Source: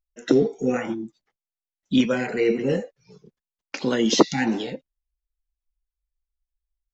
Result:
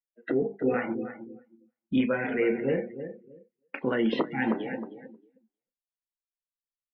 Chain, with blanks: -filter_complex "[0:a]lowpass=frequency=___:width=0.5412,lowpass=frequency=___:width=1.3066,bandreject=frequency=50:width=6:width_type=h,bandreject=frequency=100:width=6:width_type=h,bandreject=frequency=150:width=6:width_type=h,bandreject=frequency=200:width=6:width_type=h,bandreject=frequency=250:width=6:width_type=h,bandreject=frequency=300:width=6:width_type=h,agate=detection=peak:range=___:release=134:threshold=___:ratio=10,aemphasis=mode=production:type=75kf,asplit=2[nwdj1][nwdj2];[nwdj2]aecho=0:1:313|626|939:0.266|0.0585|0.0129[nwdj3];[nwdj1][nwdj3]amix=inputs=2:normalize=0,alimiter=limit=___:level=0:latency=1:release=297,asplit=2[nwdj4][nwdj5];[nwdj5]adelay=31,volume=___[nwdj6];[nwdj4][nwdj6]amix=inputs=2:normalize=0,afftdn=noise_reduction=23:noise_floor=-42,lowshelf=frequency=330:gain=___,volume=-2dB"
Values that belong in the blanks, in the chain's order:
2.2k, 2.2k, -7dB, -40dB, -12.5dB, -13dB, -3